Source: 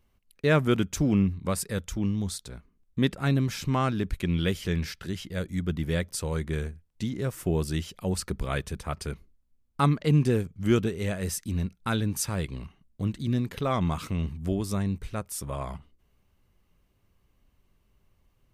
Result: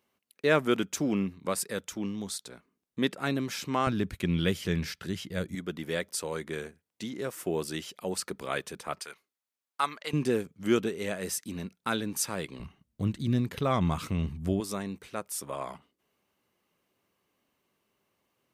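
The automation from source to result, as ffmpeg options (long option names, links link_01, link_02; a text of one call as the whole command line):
ffmpeg -i in.wav -af "asetnsamples=nb_out_samples=441:pad=0,asendcmd='3.87 highpass f 110;5.55 highpass f 300;9 highpass f 860;10.13 highpass f 250;12.6 highpass f 74;14.6 highpass f 280',highpass=270" out.wav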